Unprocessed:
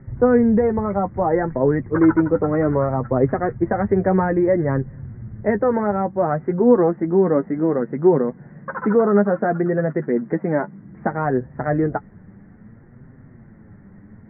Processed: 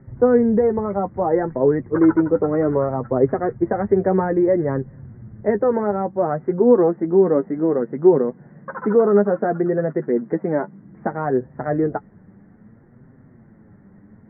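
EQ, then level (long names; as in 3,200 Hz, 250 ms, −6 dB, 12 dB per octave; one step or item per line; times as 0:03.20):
low-shelf EQ 120 Hz −9.5 dB
high-shelf EQ 2,100 Hz −11 dB
dynamic equaliser 410 Hz, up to +4 dB, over −28 dBFS, Q 2.6
0.0 dB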